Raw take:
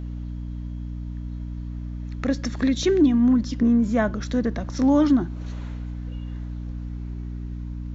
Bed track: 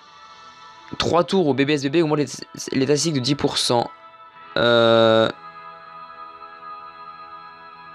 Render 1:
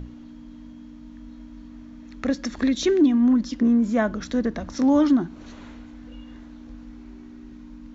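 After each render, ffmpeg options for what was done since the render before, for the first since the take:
-af "bandreject=f=60:t=h:w=6,bandreject=f=120:t=h:w=6,bandreject=f=180:t=h:w=6"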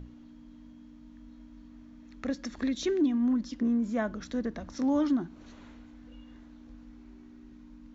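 -af "volume=-8.5dB"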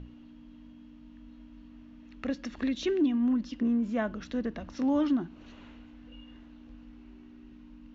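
-af "lowpass=4.8k,equalizer=f=2.8k:t=o:w=0.27:g=9.5"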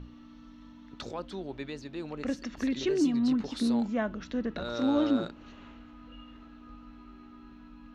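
-filter_complex "[1:a]volume=-20.5dB[a];[0:a][a]amix=inputs=2:normalize=0"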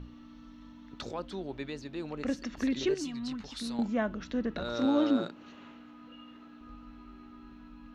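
-filter_complex "[0:a]asettb=1/sr,asplit=3[a][b][c];[a]atrim=end=2.944[d];[b]atrim=start=2.94:end=3.79,asetpts=PTS-STARTPTS,afade=t=in:d=0.004:c=qsin,afade=t=out:st=0.846:d=0.004:c=qsin,equalizer=f=350:t=o:w=2.5:g=-13[e];[c]atrim=start=3.786[f];[d][e]acrossfade=d=0.004:c1=hsin:c2=qsin[g];[g][f]acrossfade=d=0.004:c1=qsin:c2=hsin,asettb=1/sr,asplit=3[h][i][j];[h]atrim=end=4.854[k];[i]atrim=start=4.85:end=6.61,asetpts=PTS-STARTPTS,afade=t=in:d=0.004:c=qsin,afade=t=out:st=1.756:d=0.004:c=qsin,highpass=150[l];[j]atrim=start=6.606[m];[k][l]acrossfade=d=0.004:c1=hsin:c2=qsin[n];[n][m]acrossfade=d=0.004:c1=qsin:c2=hsin"

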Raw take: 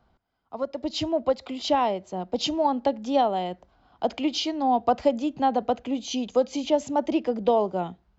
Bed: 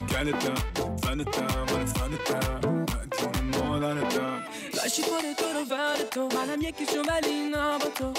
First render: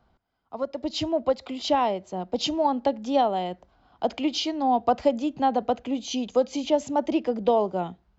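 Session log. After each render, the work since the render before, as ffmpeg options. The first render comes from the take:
-af anull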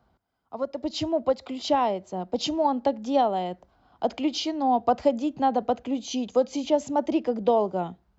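-af "highpass=47,equalizer=f=2.8k:w=1:g=-3"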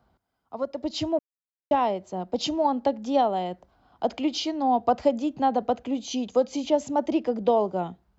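-filter_complex "[0:a]asplit=3[a][b][c];[a]atrim=end=1.19,asetpts=PTS-STARTPTS,afade=t=out:st=1.186:d=0.004:c=hsin[d];[b]atrim=start=1.19:end=1.71,asetpts=PTS-STARTPTS,volume=0[e];[c]atrim=start=1.71,asetpts=PTS-STARTPTS,afade=t=in:d=0.004:c=hsin[f];[d][e][f]concat=n=3:v=0:a=1"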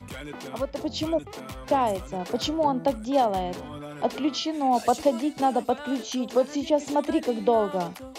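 -filter_complex "[1:a]volume=-10.5dB[a];[0:a][a]amix=inputs=2:normalize=0"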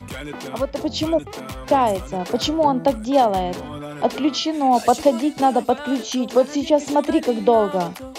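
-af "volume=6dB"

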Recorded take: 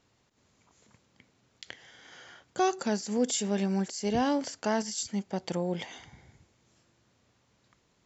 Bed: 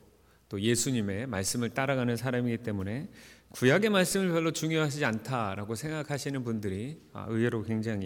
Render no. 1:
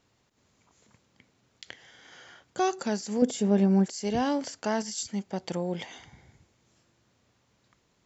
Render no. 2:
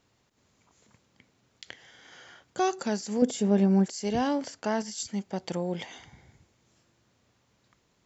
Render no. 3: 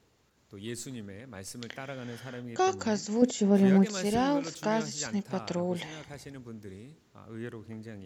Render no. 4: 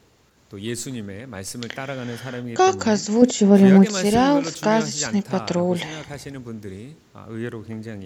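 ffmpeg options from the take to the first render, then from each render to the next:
-filter_complex "[0:a]asettb=1/sr,asplit=3[a][b][c];[a]atrim=end=3.224[d];[b]atrim=start=3.22:end=3.86,asetpts=PTS-STARTPTS,afade=t=in:d=0.004:c=qsin,afade=t=out:st=0.636:d=0.004:c=qsin,tiltshelf=f=1.3k:g=7.5[e];[c]atrim=start=3.856[f];[d][e]acrossfade=d=0.004:c1=hsin:c2=qsin[g];[g][f]acrossfade=d=0.004:c1=qsin:c2=hsin"
-filter_complex "[0:a]asettb=1/sr,asplit=3[a][b][c];[a]atrim=end=4.274[d];[b]atrim=start=4.27:end=5,asetpts=PTS-STARTPTS,afade=t=in:d=0.004:c=qsin,afade=t=out:st=0.726:d=0.004:c=qsin,highshelf=f=4.4k:g=-5[e];[c]atrim=start=4.996[f];[d][e]acrossfade=d=0.004:c1=hsin:c2=qsin[g];[g][f]acrossfade=d=0.004:c1=qsin:c2=hsin"
-filter_complex "[1:a]volume=-11.5dB[a];[0:a][a]amix=inputs=2:normalize=0"
-af "volume=10dB,alimiter=limit=-2dB:level=0:latency=1"

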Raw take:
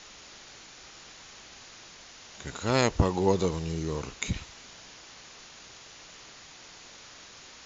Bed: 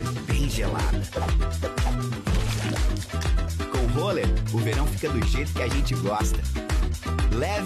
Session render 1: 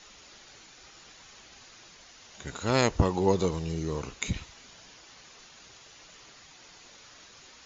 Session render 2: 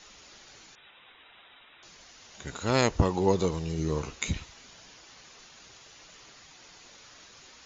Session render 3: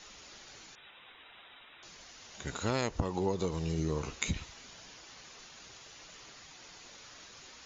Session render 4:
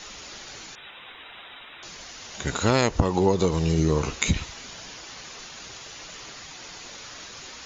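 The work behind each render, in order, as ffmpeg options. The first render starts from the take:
-af "afftdn=nr=6:nf=-50"
-filter_complex "[0:a]asettb=1/sr,asplit=3[a][b][c];[a]atrim=end=0.754[d];[b]atrim=start=0.75:end=1.83,asetpts=PTS-STARTPTS,afade=t=in:d=0.004:c=qsin,afade=t=out:st=1.076:d=0.004:c=qsin,lowpass=f=3.3k:t=q:w=0.5098,lowpass=f=3.3k:t=q:w=0.6013,lowpass=f=3.3k:t=q:w=0.9,lowpass=f=3.3k:t=q:w=2.563,afreqshift=-3900[e];[c]atrim=start=1.826[f];[d][e]acrossfade=d=0.004:c1=hsin:c2=qsin[g];[g][f]acrossfade=d=0.004:c1=qsin:c2=hsin,asettb=1/sr,asplit=3[h][i][j];[h]atrim=end=3.774[k];[i]atrim=start=3.77:end=4.34,asetpts=PTS-STARTPTS,afade=t=in:d=0.004:c=qsin,afade=t=out:st=0.566:d=0.004:c=qsin,asplit=2[l][m];[m]adelay=13,volume=-6dB[n];[l][n]amix=inputs=2:normalize=0,atrim=end_sample=25137[o];[j]atrim=start=4.336[p];[k][o]acrossfade=d=0.004:c1=hsin:c2=qsin[q];[q][p]acrossfade=d=0.004:c1=qsin:c2=hsin"
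-af "acompressor=threshold=-28dB:ratio=6"
-af "volume=11dB,alimiter=limit=-3dB:level=0:latency=1"

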